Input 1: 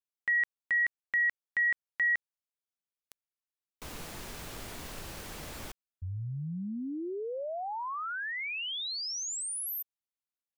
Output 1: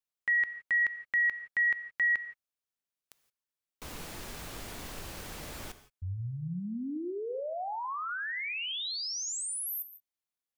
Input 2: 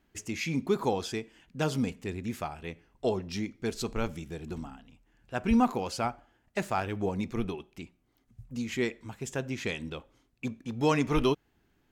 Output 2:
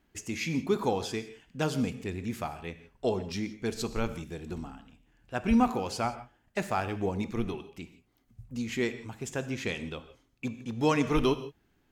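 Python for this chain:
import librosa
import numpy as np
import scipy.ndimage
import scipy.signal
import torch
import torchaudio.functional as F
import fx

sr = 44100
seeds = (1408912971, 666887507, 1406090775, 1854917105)

y = fx.rev_gated(x, sr, seeds[0], gate_ms=190, shape='flat', drr_db=11.5)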